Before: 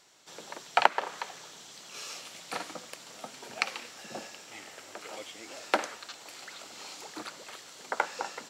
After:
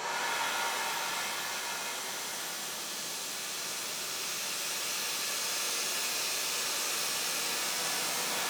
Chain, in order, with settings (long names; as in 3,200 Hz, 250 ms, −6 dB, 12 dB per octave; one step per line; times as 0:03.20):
extreme stretch with random phases 8.7×, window 1.00 s, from 0:01.34
reverb with rising layers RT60 1.3 s, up +7 semitones, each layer −2 dB, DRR −2 dB
level +4.5 dB